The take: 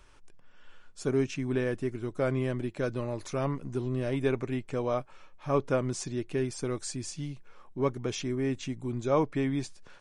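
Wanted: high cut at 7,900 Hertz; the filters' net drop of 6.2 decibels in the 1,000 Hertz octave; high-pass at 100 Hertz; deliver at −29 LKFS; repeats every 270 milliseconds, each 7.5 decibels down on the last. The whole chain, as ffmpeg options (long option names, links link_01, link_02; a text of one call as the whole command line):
ffmpeg -i in.wav -af "highpass=100,lowpass=7900,equalizer=frequency=1000:width_type=o:gain=-8,aecho=1:1:270|540|810|1080|1350:0.422|0.177|0.0744|0.0312|0.0131,volume=3.5dB" out.wav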